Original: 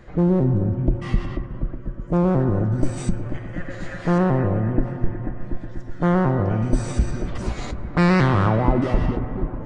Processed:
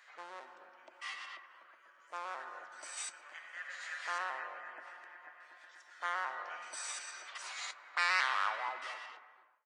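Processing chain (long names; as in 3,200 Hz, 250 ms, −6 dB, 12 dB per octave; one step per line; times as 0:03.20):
fade-out on the ending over 1.02 s
Bessel high-pass filter 1,600 Hz, order 4
level −2 dB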